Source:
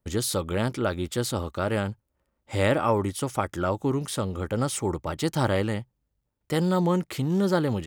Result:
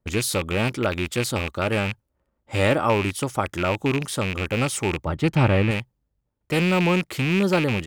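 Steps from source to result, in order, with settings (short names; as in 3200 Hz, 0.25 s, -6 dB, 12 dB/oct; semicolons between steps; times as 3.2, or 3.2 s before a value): rattling part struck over -29 dBFS, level -18 dBFS; 5.06–5.71 tone controls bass +6 dB, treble -12 dB; mismatched tape noise reduction decoder only; gain +2.5 dB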